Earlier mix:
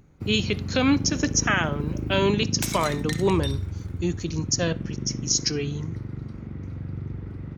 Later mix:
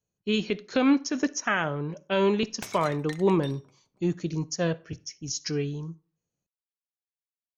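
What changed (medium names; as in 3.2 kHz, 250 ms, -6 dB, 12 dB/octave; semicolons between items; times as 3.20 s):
first sound: muted; second sound: send off; master: add treble shelf 2.8 kHz -12 dB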